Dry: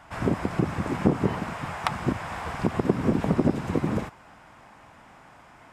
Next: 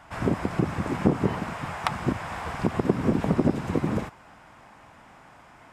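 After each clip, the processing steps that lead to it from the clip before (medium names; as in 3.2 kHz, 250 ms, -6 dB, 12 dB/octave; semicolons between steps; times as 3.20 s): no audible change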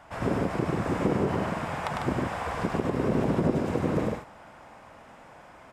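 peaking EQ 530 Hz +6.5 dB 0.93 oct; peak limiter -12.5 dBFS, peak gain reduction 10 dB; on a send: loudspeakers at several distances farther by 35 m -3 dB, 51 m -5 dB; on the sum: trim -3 dB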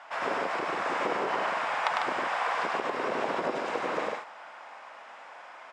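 band-pass 790–5300 Hz; trim +6 dB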